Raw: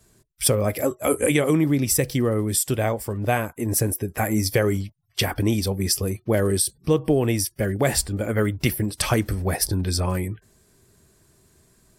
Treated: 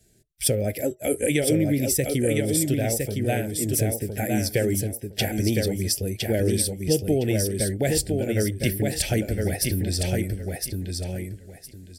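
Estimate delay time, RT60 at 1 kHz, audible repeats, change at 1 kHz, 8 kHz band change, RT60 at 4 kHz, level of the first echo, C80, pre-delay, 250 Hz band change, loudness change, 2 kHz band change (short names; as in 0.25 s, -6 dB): 1.011 s, none, 3, -7.0 dB, -1.0 dB, none, -4.0 dB, none, none, -1.0 dB, -1.5 dB, -3.0 dB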